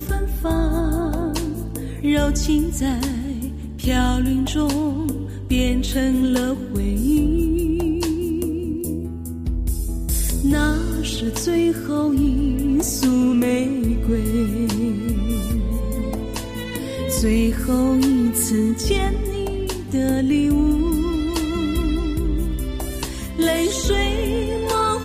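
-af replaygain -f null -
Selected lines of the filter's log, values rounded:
track_gain = +2.3 dB
track_peak = 0.346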